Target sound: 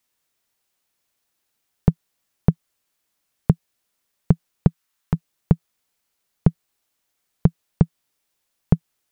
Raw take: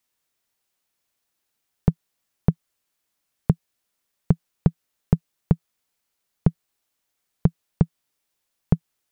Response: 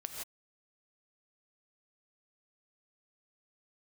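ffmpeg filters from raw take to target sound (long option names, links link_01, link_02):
-filter_complex "[0:a]asettb=1/sr,asplit=3[link_01][link_02][link_03];[link_01]atrim=end=4.674[link_04];[link_02]atrim=start=4.67:end=5.14,asetpts=PTS-STARTPTS,afade=type=in:duration=0.004:curve=qsin,afade=type=out:start_time=0.466:duration=0.004:curve=qsin,lowshelf=frequency=790:width_type=q:width=1.5:gain=-6.5[link_05];[link_03]atrim=start=5.136[link_06];[link_04][link_05]acrossfade=duration=0.004:curve1=hsin:curve2=qsin[link_07];[link_07][link_06]acrossfade=duration=0.004:curve1=qsin:curve2=hsin,volume=2.5dB"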